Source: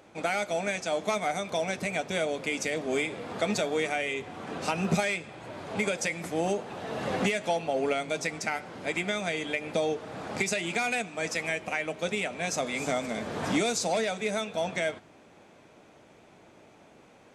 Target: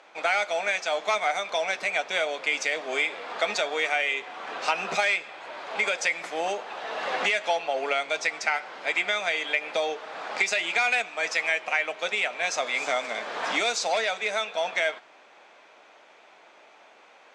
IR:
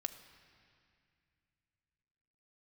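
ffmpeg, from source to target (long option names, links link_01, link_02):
-af "highpass=780,lowpass=4800,volume=7dB"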